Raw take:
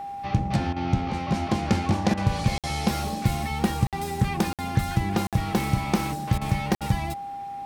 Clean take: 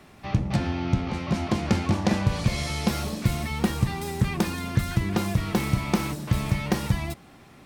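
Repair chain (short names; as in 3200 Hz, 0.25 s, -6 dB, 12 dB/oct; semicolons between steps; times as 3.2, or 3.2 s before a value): notch 800 Hz, Q 30; interpolate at 2.58/3.87/4.53/5.27/6.75, 57 ms; interpolate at 0.73/2.14/6.38/6.78, 32 ms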